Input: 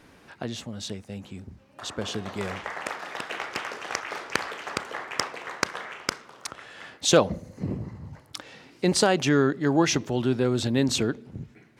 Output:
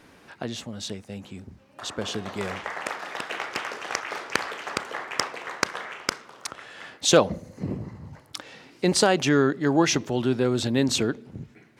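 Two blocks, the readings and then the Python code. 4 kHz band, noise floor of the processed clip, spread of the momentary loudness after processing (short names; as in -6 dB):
+1.5 dB, -55 dBFS, 19 LU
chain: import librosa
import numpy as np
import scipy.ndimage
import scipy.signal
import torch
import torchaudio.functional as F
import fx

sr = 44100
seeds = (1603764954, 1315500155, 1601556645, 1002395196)

y = fx.low_shelf(x, sr, hz=120.0, db=-5.0)
y = y * librosa.db_to_amplitude(1.5)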